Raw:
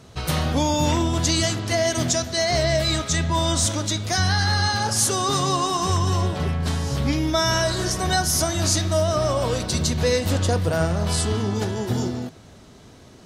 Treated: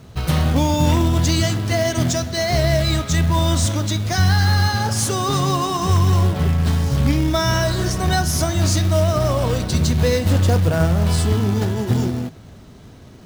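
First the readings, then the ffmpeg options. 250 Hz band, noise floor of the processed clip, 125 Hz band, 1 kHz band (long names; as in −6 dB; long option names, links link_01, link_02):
+4.5 dB, −42 dBFS, +7.0 dB, +1.0 dB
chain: -af "acrusher=bits=3:mode=log:mix=0:aa=0.000001,bass=frequency=250:gain=6,treble=frequency=4000:gain=-4,volume=1dB"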